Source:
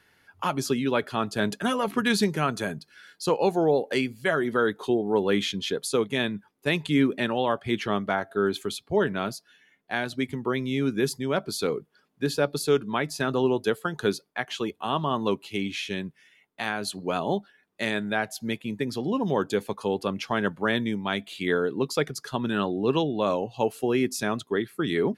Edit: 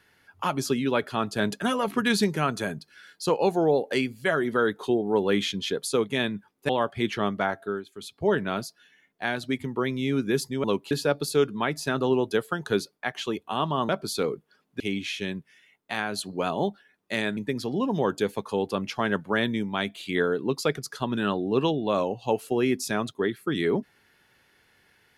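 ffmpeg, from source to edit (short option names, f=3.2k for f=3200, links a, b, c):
-filter_complex "[0:a]asplit=9[a][b][c][d][e][f][g][h][i];[a]atrim=end=6.692[j];[b]atrim=start=7.378:end=8.54,asetpts=PTS-STARTPTS,afade=t=out:st=0.872:d=0.29:silence=0.133352[k];[c]atrim=start=8.54:end=8.62,asetpts=PTS-STARTPTS,volume=-17.5dB[l];[d]atrim=start=8.62:end=11.332,asetpts=PTS-STARTPTS,afade=t=in:d=0.29:silence=0.133352[m];[e]atrim=start=15.218:end=15.492[n];[f]atrim=start=12.238:end=15.222[o];[g]atrim=start=11.328:end=12.242[p];[h]atrim=start=15.488:end=18.062[q];[i]atrim=start=18.688[r];[k][l][m]concat=n=3:v=0:a=1[s];[j][s]acrossfade=d=0.004:c1=hsin:c2=hsin[t];[t][n]acrossfade=d=0.004:c1=hsin:c2=hsin[u];[u][o]acrossfade=d=0.004:c1=hsin:c2=hsin[v];[v][p]acrossfade=d=0.004:c1=hsin:c2=hsin[w];[w][q]acrossfade=d=0.004:c1=hsin:c2=hsin[x];[x][r]acrossfade=d=0.004:c1=hsin:c2=hsin"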